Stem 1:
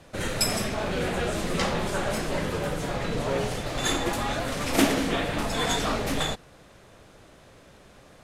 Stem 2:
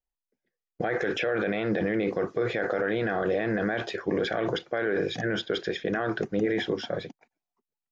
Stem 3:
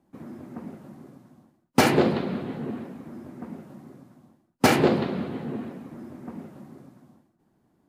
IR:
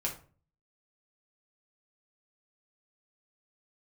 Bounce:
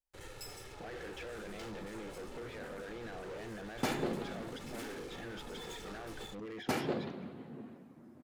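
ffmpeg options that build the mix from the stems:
-filter_complex "[0:a]aecho=1:1:2.3:0.8,aeval=exprs='sgn(val(0))*max(abs(val(0))-0.02,0)':channel_layout=same,volume=-9dB[link_01];[1:a]volume=-5.5dB[link_02];[2:a]adelay=2050,volume=-15.5dB[link_03];[link_01][link_02]amix=inputs=2:normalize=0,asoftclip=type=hard:threshold=-30.5dB,alimiter=level_in=17dB:limit=-24dB:level=0:latency=1:release=44,volume=-17dB,volume=0dB[link_04];[link_03][link_04]amix=inputs=2:normalize=0"

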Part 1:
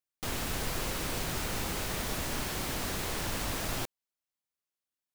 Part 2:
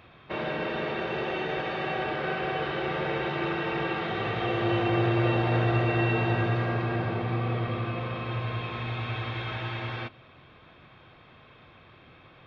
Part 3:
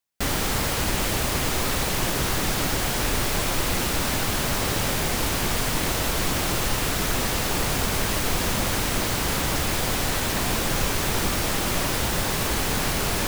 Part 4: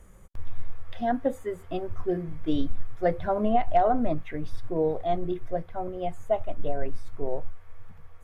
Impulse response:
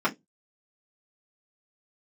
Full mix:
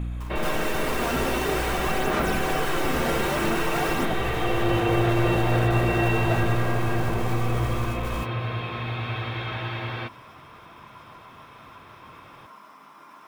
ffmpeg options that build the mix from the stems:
-filter_complex "[0:a]aphaser=in_gain=1:out_gain=1:delay=4.4:decay=0.68:speed=0.51:type=sinusoidal,adelay=200,volume=-2.5dB,asplit=2[link_01][link_02];[link_02]volume=-10.5dB[link_03];[1:a]volume=2.5dB[link_04];[2:a]alimiter=limit=-21.5dB:level=0:latency=1:release=230,aeval=exprs='val(0)*sin(2*PI*1000*n/s)':channel_layout=same,volume=-6.5dB,asplit=2[link_05][link_06];[link_06]volume=-21.5dB[link_07];[3:a]aeval=exprs='val(0)+0.0251*(sin(2*PI*60*n/s)+sin(2*PI*2*60*n/s)/2+sin(2*PI*3*60*n/s)/3+sin(2*PI*4*60*n/s)/4+sin(2*PI*5*60*n/s)/5)':channel_layout=same,volume=28dB,asoftclip=hard,volume=-28dB,aphaser=in_gain=1:out_gain=1:delay=2.8:decay=0.49:speed=1.7:type=triangular,volume=-0.5dB,asplit=2[link_08][link_09];[link_09]apad=whole_len=585399[link_10];[link_05][link_10]sidechaingate=range=-33dB:threshold=-30dB:ratio=16:detection=peak[link_11];[link_01][link_11][link_08]amix=inputs=3:normalize=0,acompressor=threshold=-24dB:ratio=6,volume=0dB[link_12];[4:a]atrim=start_sample=2205[link_13];[link_03][link_07]amix=inputs=2:normalize=0[link_14];[link_14][link_13]afir=irnorm=-1:irlink=0[link_15];[link_04][link_12][link_15]amix=inputs=3:normalize=0"

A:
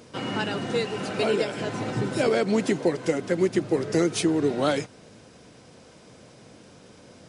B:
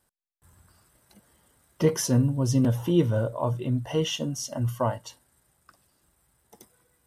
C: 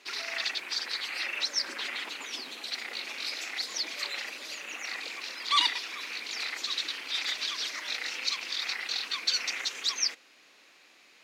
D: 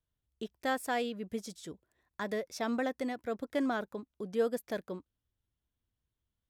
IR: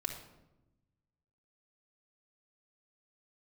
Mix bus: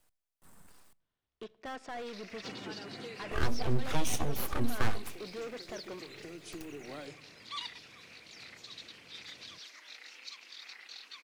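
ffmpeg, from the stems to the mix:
-filter_complex "[0:a]acompressor=threshold=-31dB:ratio=4,adelay=2300,volume=-14dB,asplit=2[link_01][link_02];[link_02]volume=-8.5dB[link_03];[1:a]equalizer=frequency=780:width_type=o:width=1.4:gain=3.5,aeval=exprs='abs(val(0))':channel_layout=same,volume=0dB,asplit=3[link_04][link_05][link_06];[link_04]atrim=end=0.93,asetpts=PTS-STARTPTS,afade=type=out:start_time=0.926:duration=0.004:curve=hsin[link_07];[link_05]atrim=start=0.93:end=3.31,asetpts=PTS-STARTPTS,volume=0[link_08];[link_06]atrim=start=3.31,asetpts=PTS-STARTPTS,afade=type=in:duration=0.004:curve=hsin[link_09];[link_07][link_08][link_09]concat=n=3:v=0:a=1,asplit=3[link_10][link_11][link_12];[link_11]volume=-18.5dB[link_13];[2:a]adelay=2000,volume=-16dB[link_14];[3:a]lowpass=frequency=6000:width=0.5412,lowpass=frequency=6000:width=1.3066,asplit=2[link_15][link_16];[link_16]highpass=frequency=720:poles=1,volume=29dB,asoftclip=type=tanh:threshold=-19.5dB[link_17];[link_15][link_17]amix=inputs=2:normalize=0,lowpass=frequency=2100:poles=1,volume=-6dB,adelay=1000,volume=-15.5dB,asplit=2[link_18][link_19];[link_19]volume=-15dB[link_20];[link_12]apad=whole_len=422568[link_21];[link_01][link_21]sidechaincompress=threshold=-43dB:ratio=8:attack=16:release=1150[link_22];[4:a]atrim=start_sample=2205[link_23];[link_03][link_13][link_20]amix=inputs=3:normalize=0[link_24];[link_24][link_23]afir=irnorm=-1:irlink=0[link_25];[link_22][link_10][link_14][link_18][link_25]amix=inputs=5:normalize=0,acrossover=split=160|3000[link_26][link_27][link_28];[link_27]acompressor=threshold=-33dB:ratio=6[link_29];[link_26][link_29][link_28]amix=inputs=3:normalize=0"

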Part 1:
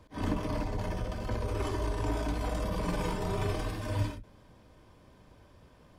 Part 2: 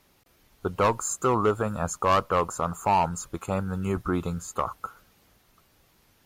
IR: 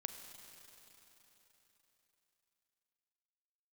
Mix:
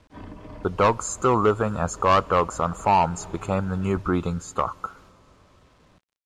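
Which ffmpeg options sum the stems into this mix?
-filter_complex "[0:a]lowpass=3400,acompressor=threshold=-38dB:ratio=4,volume=-1dB,asplit=2[link_01][link_02];[link_02]volume=-19dB[link_03];[1:a]agate=range=-15dB:threshold=-57dB:ratio=16:detection=peak,volume=2.5dB,asplit=3[link_04][link_05][link_06];[link_05]volume=-15dB[link_07];[link_06]apad=whole_len=263845[link_08];[link_01][link_08]sidechaincompress=threshold=-28dB:ratio=8:attack=16:release=208[link_09];[2:a]atrim=start_sample=2205[link_10];[link_03][link_07]amix=inputs=2:normalize=0[link_11];[link_11][link_10]afir=irnorm=-1:irlink=0[link_12];[link_09][link_04][link_12]amix=inputs=3:normalize=0,acrusher=bits=9:mix=0:aa=0.000001,lowpass=6500"

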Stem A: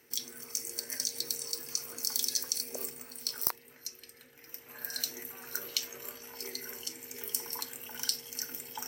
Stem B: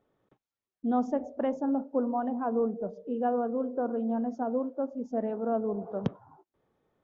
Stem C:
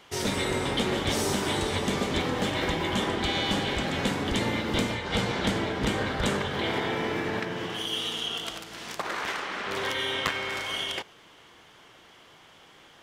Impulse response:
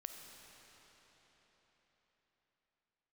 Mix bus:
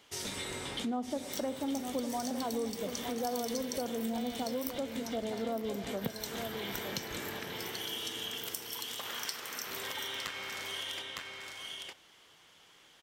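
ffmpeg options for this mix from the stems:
-filter_complex "[0:a]adelay=1200,volume=-3dB,asplit=2[link_01][link_02];[link_02]volume=-12.5dB[link_03];[1:a]volume=2dB,asplit=3[link_04][link_05][link_06];[link_05]volume=-10.5dB[link_07];[2:a]highshelf=frequency=2700:gain=11,volume=-12.5dB,asplit=2[link_08][link_09];[link_09]volume=-5dB[link_10];[link_06]apad=whole_len=574285[link_11];[link_08][link_11]sidechaincompress=threshold=-31dB:ratio=8:attack=11:release=418[link_12];[link_03][link_07][link_10]amix=inputs=3:normalize=0,aecho=0:1:909:1[link_13];[link_01][link_04][link_12][link_13]amix=inputs=4:normalize=0,acompressor=threshold=-36dB:ratio=2.5"

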